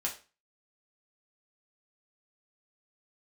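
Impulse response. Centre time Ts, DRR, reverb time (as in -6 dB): 19 ms, -2.5 dB, 0.35 s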